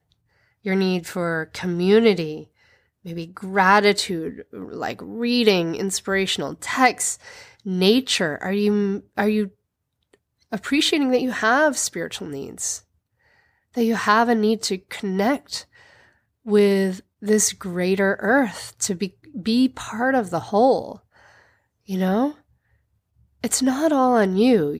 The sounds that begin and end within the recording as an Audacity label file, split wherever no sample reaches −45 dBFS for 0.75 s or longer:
13.740000	22.390000	sound